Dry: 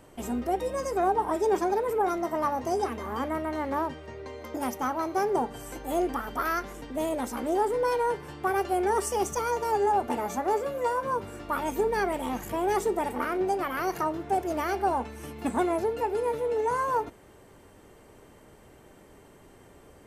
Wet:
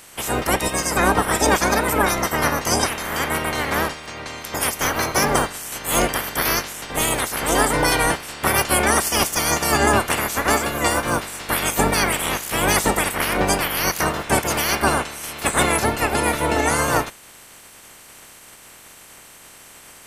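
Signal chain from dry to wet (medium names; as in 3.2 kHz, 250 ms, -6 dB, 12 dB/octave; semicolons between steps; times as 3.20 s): spectral peaks clipped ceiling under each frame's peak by 27 dB; peaking EQ 9.7 kHz +3 dB 0.64 oct; trim +8 dB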